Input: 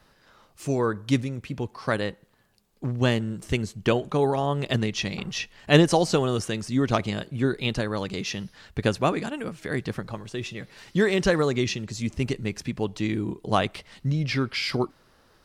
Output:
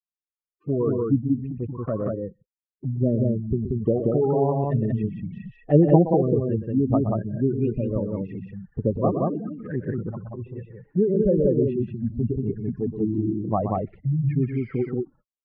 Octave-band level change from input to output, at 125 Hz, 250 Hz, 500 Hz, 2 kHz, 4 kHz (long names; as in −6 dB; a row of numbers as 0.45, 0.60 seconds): +3.5 dB, +3.5 dB, +2.5 dB, below −15 dB, below −35 dB